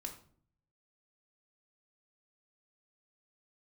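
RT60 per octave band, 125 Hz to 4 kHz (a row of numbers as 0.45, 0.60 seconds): 1.0, 0.75, 0.60, 0.45, 0.40, 0.35 seconds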